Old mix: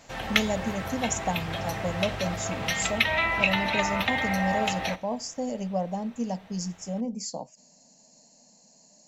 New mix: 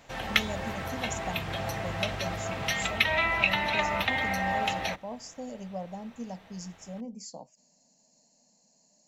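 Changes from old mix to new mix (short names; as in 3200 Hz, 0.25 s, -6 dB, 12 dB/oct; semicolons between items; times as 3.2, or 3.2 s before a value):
speech -8.5 dB; reverb: off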